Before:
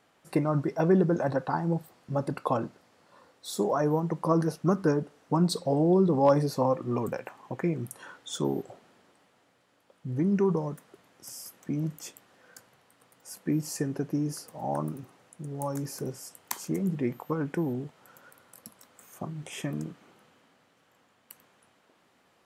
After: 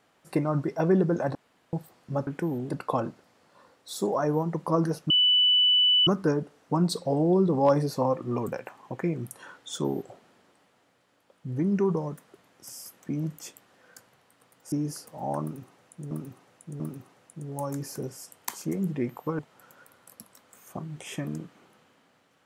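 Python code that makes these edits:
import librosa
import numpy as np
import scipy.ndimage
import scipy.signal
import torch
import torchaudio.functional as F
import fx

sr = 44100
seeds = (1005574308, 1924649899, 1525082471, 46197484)

y = fx.edit(x, sr, fx.room_tone_fill(start_s=1.35, length_s=0.38),
    fx.insert_tone(at_s=4.67, length_s=0.97, hz=2980.0, db=-17.5),
    fx.cut(start_s=13.32, length_s=0.81),
    fx.repeat(start_s=14.83, length_s=0.69, count=3),
    fx.move(start_s=17.42, length_s=0.43, to_s=2.27), tone=tone)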